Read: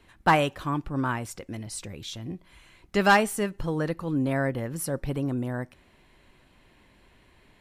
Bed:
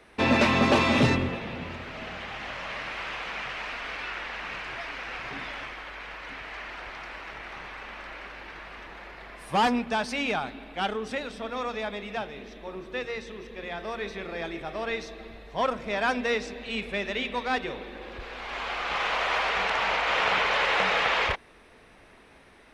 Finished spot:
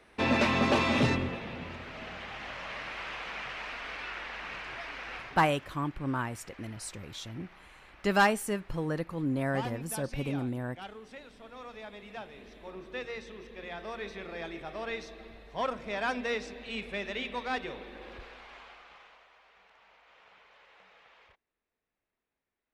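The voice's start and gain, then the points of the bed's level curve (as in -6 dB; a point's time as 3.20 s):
5.10 s, -4.5 dB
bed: 5.17 s -4.5 dB
5.50 s -15.5 dB
11.42 s -15.5 dB
12.79 s -5.5 dB
18.14 s -5.5 dB
19.33 s -35 dB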